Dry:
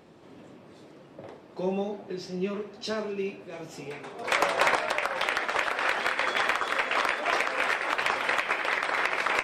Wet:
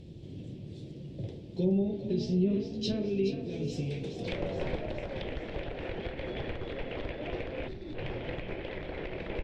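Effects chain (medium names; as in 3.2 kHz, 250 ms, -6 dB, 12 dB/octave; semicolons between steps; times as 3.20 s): band-stop 420 Hz, Q 12; low-pass that closes with the level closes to 1.4 kHz, closed at -25 dBFS; RIAA curve playback; in parallel at +3 dB: peak limiter -21 dBFS, peak gain reduction 10 dB; on the sum: FFT filter 130 Hz 0 dB, 240 Hz -9 dB, 410 Hz -5 dB, 1.2 kHz -29 dB, 3.3 kHz +3 dB; on a send: frequency-shifting echo 422 ms, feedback 57%, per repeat +36 Hz, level -10.5 dB; on the sum: time-frequency box 7.68–7.95 s, 390–3400 Hz -13 dB; trim -2.5 dB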